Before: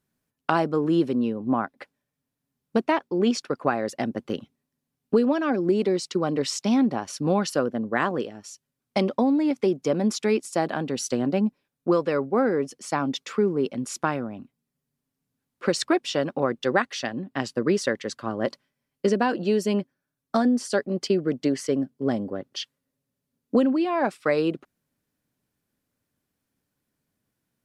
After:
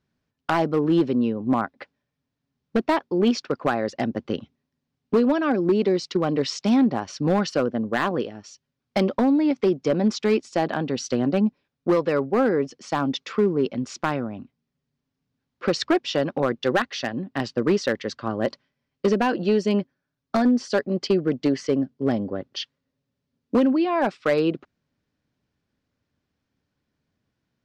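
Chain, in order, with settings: LPF 5600 Hz 24 dB/oct; bell 73 Hz +5.5 dB 1.1 oct; overloaded stage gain 15 dB; gain +2 dB

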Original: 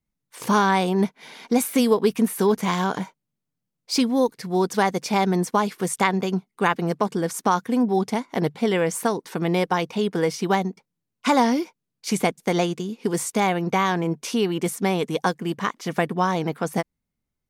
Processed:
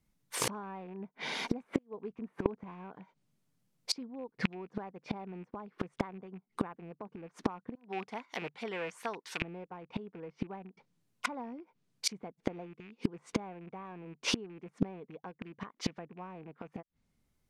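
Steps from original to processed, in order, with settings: rattling part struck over -30 dBFS, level -17 dBFS; treble ducked by the level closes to 1200 Hz, closed at -20 dBFS; 1.78–2.46 flipped gate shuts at -24 dBFS, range -28 dB; 7.75–9.42 pre-emphasis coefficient 0.97; flipped gate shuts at -21 dBFS, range -29 dB; gain +6 dB

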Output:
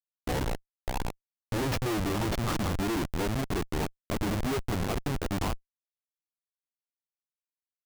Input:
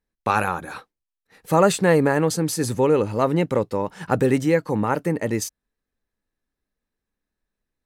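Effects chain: gliding pitch shift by -8.5 st ending unshifted; delay with a stepping band-pass 0.588 s, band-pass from 1100 Hz, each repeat 1.4 oct, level -1 dB; Schmitt trigger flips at -22.5 dBFS; gain -4.5 dB

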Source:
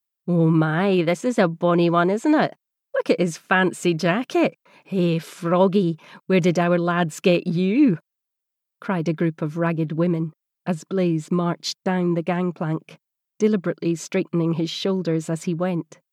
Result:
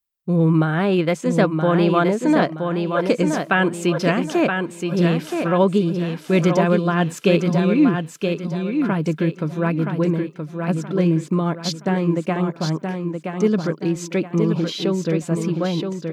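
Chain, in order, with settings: low shelf 74 Hz +10 dB; feedback echo 0.973 s, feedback 34%, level -5.5 dB

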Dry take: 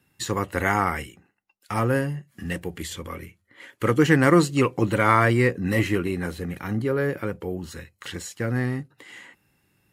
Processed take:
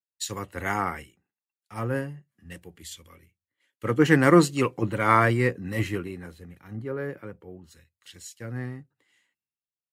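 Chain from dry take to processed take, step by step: three-band expander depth 100%; gain -6 dB

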